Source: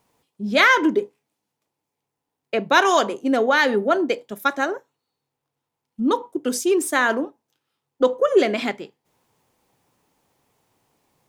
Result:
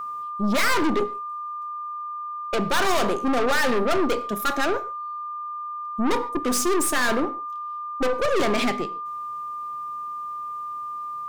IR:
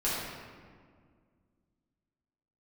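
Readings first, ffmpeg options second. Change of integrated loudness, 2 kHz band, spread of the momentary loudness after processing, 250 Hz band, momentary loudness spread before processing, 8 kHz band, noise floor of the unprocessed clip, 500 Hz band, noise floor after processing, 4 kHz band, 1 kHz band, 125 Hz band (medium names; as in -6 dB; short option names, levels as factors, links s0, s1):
-5.0 dB, -5.0 dB, 11 LU, -2.0 dB, 11 LU, +2.5 dB, -82 dBFS, -4.0 dB, -33 dBFS, -2.0 dB, -0.5 dB, no reading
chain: -filter_complex "[0:a]aeval=exprs='(tanh(28.2*val(0)+0.4)-tanh(0.4))/28.2':c=same,aeval=exprs='val(0)+0.0126*sin(2*PI*1200*n/s)':c=same,asplit=2[s0][s1];[1:a]atrim=start_sample=2205,atrim=end_sample=6615[s2];[s1][s2]afir=irnorm=-1:irlink=0,volume=0.0944[s3];[s0][s3]amix=inputs=2:normalize=0,volume=2.37"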